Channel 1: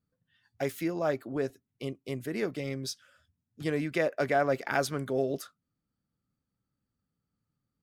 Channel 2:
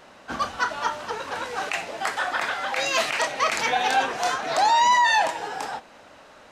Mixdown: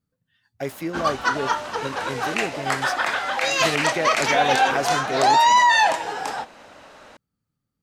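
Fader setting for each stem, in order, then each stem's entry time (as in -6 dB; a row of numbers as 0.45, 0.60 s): +2.5, +3.0 dB; 0.00, 0.65 s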